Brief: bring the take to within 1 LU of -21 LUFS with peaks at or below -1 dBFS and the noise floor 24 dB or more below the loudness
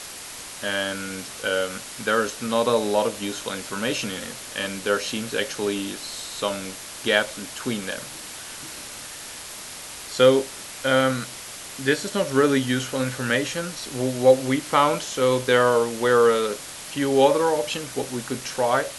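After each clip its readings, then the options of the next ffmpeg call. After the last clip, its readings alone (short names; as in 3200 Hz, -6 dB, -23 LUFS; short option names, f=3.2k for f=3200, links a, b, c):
noise floor -38 dBFS; noise floor target -48 dBFS; loudness -23.5 LUFS; peak -3.5 dBFS; loudness target -21.0 LUFS
-> -af "afftdn=nr=10:nf=-38"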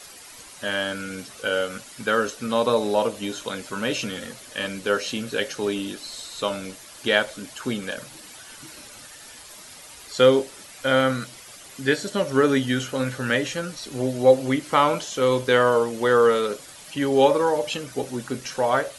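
noise floor -44 dBFS; noise floor target -48 dBFS
-> -af "afftdn=nr=6:nf=-44"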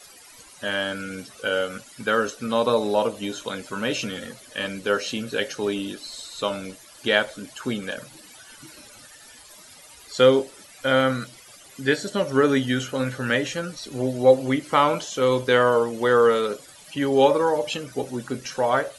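noise floor -48 dBFS; loudness -23.5 LUFS; peak -4.0 dBFS; loudness target -21.0 LUFS
-> -af "volume=2.5dB"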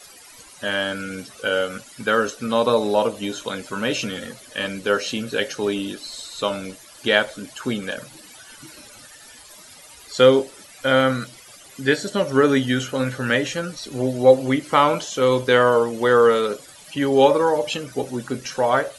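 loudness -21.0 LUFS; peak -1.5 dBFS; noise floor -46 dBFS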